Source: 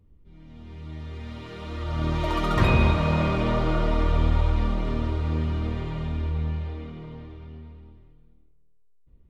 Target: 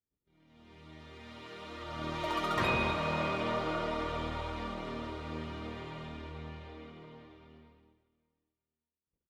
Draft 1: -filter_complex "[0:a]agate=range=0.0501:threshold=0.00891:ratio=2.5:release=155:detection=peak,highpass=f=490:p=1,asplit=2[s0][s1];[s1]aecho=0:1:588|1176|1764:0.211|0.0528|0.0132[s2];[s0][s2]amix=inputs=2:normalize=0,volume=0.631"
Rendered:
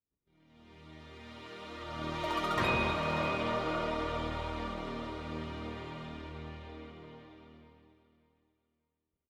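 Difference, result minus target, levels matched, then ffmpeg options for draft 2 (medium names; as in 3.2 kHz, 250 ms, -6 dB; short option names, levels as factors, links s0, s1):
echo-to-direct +11 dB
-filter_complex "[0:a]agate=range=0.0501:threshold=0.00891:ratio=2.5:release=155:detection=peak,highpass=f=490:p=1,asplit=2[s0][s1];[s1]aecho=0:1:588|1176:0.0596|0.0149[s2];[s0][s2]amix=inputs=2:normalize=0,volume=0.631"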